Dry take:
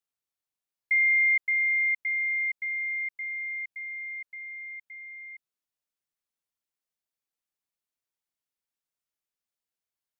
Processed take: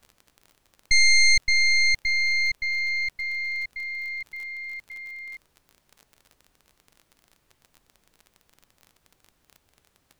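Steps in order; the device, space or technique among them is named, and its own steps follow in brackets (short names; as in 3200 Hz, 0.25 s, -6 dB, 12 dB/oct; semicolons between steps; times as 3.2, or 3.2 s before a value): record under a worn stylus (tracing distortion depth 0.12 ms; crackle 32/s -40 dBFS; pink noise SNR 42 dB); gain +4.5 dB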